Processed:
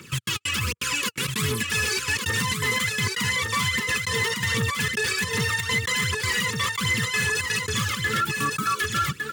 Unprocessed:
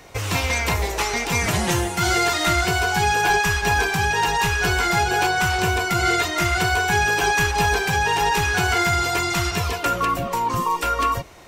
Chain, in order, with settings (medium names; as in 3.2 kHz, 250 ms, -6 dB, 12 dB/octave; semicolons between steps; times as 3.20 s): trance gate "xx.x.xxx.x" 135 bpm -60 dB; tape speed +23%; Butterworth band-stop 710 Hz, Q 0.88; phaser 1.3 Hz, delay 2.5 ms, feedback 65%; high-pass 110 Hz 24 dB/octave; peak limiter -16 dBFS, peak gain reduction 11 dB; delay 1157 ms -4.5 dB; overload inside the chain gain 18 dB